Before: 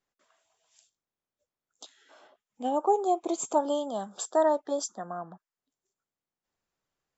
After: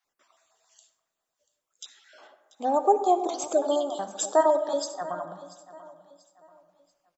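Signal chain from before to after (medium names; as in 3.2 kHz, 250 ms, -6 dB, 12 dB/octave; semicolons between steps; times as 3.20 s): random holes in the spectrogram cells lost 21%; bass shelf 320 Hz -8 dB; hum notches 50/100/150/200/250/300 Hz; feedback delay 687 ms, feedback 35%, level -18 dB; on a send at -10.5 dB: reverberation RT60 1.4 s, pre-delay 53 ms; on the sum: trim +6 dB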